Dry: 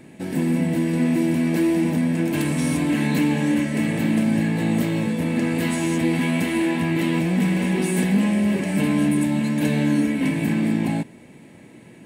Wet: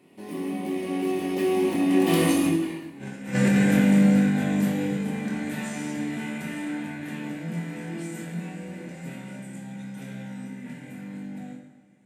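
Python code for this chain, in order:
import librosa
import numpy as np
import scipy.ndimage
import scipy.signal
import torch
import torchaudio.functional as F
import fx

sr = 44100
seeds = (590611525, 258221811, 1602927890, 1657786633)

y = fx.doppler_pass(x, sr, speed_mps=39, closest_m=6.1, pass_at_s=2.85)
y = scipy.signal.sosfilt(scipy.signal.butter(2, 120.0, 'highpass', fs=sr, output='sos'), y)
y = fx.hum_notches(y, sr, base_hz=60, count=5)
y = fx.over_compress(y, sr, threshold_db=-35.0, ratio=-0.5)
y = fx.doubler(y, sr, ms=24.0, db=-5.5)
y = fx.rev_plate(y, sr, seeds[0], rt60_s=1.2, hf_ratio=0.7, predelay_ms=0, drr_db=1.0)
y = y * librosa.db_to_amplitude(9.0)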